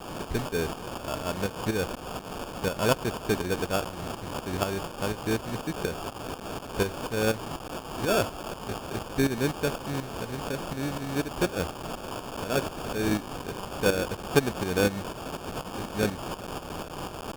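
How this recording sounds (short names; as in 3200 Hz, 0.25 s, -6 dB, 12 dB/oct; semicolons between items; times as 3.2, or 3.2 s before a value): a quantiser's noise floor 6-bit, dither triangular; tremolo saw up 4.1 Hz, depth 65%; aliases and images of a low sample rate 2000 Hz, jitter 0%; Opus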